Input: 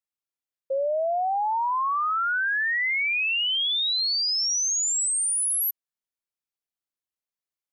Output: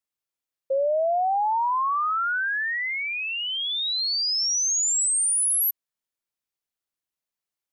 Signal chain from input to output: dynamic EQ 2600 Hz, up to -7 dB, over -39 dBFS, Q 1; gain +2.5 dB

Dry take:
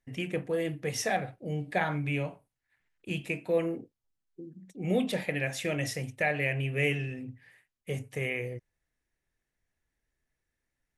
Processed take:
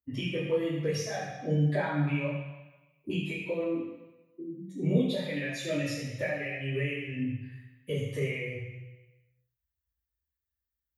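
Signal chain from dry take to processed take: per-bin expansion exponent 1.5; tilt +3 dB/oct; spectral delete 2.37–3.1, 1300–9000 Hz; compressor 10:1, threshold -45 dBFS, peak gain reduction 22 dB; reverb RT60 1.1 s, pre-delay 3 ms, DRR -9.5 dB

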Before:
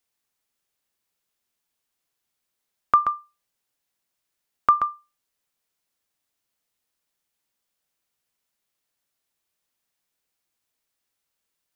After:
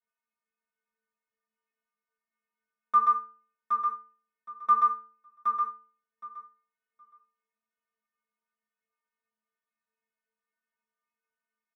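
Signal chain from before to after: median filter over 9 samples; sample leveller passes 2; compressor, threshold -19 dBFS, peak gain reduction 8 dB; overdrive pedal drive 17 dB, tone 1500 Hz, clips at -7 dBFS; metallic resonator 220 Hz, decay 0.54 s, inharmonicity 0.008; feedback echo 0.768 s, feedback 17%, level -5.5 dB; reverb RT60 0.15 s, pre-delay 3 ms, DRR 1 dB

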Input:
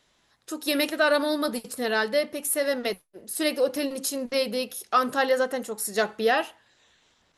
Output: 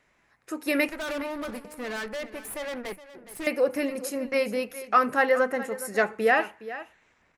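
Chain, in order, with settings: resonant high shelf 2800 Hz -6.5 dB, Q 3; 0.88–3.47 tube stage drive 31 dB, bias 0.8; echo 0.416 s -15 dB

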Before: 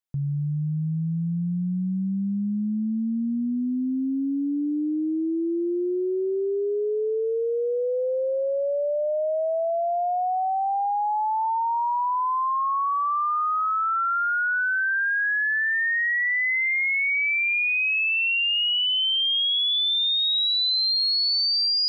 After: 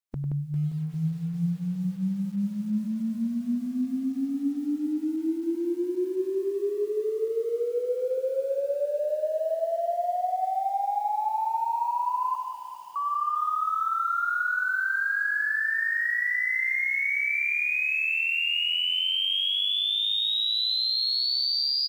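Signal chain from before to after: spectral limiter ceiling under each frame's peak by 24 dB; 12.35–12.96 inverse Chebyshev high-pass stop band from 2400 Hz; loudspeakers at several distances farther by 34 m -9 dB, 60 m -6 dB; lo-fi delay 0.4 s, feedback 55%, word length 7-bit, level -12.5 dB; gain -3 dB

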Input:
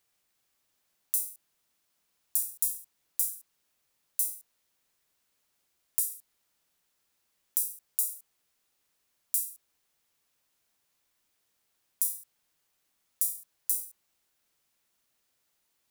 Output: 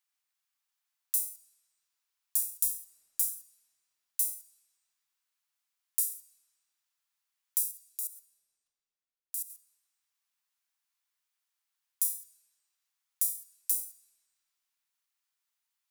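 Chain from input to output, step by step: HPF 870 Hz 24 dB/oct; gate -45 dBFS, range -9 dB; 7.71–9.5 level quantiser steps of 17 dB; on a send: reverb RT60 3.7 s, pre-delay 5 ms, DRR 15.5 dB

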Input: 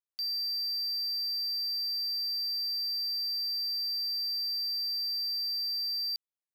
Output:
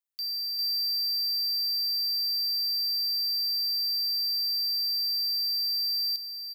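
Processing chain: HPF 1300 Hz 6 dB/oct; high shelf 11000 Hz +7.5 dB; echo 0.4 s -5.5 dB

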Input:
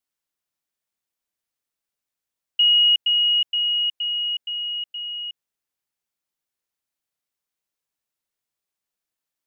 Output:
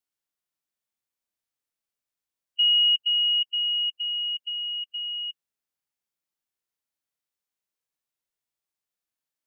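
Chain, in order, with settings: dynamic EQ 2600 Hz, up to -4 dB, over -30 dBFS, Q 1.2; harmonic-percussive split percussive -12 dB

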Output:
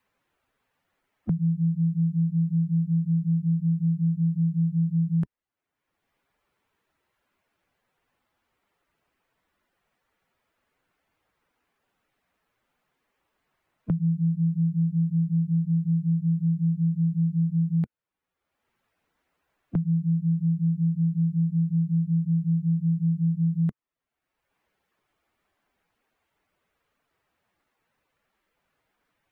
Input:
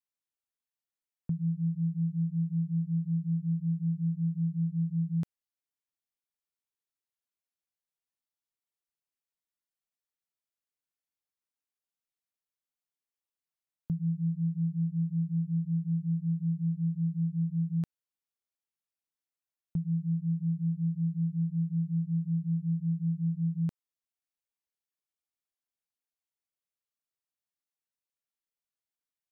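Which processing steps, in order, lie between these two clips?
bin magnitudes rounded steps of 15 dB; three-band squash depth 70%; gain +6 dB

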